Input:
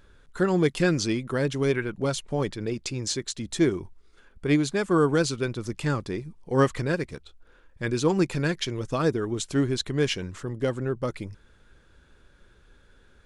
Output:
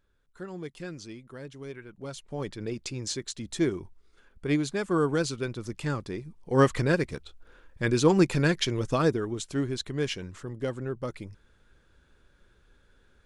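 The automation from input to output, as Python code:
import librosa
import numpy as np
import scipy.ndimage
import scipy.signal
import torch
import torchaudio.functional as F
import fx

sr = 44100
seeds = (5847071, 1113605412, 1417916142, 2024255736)

y = fx.gain(x, sr, db=fx.line((1.81, -16.5), (2.61, -4.0), (6.24, -4.0), (6.76, 2.0), (8.9, 2.0), (9.43, -5.0)))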